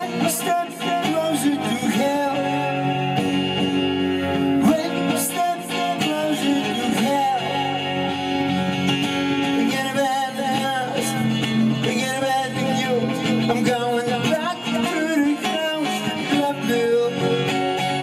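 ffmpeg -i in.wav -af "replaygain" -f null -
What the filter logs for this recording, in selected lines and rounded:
track_gain = +3.1 dB
track_peak = 0.225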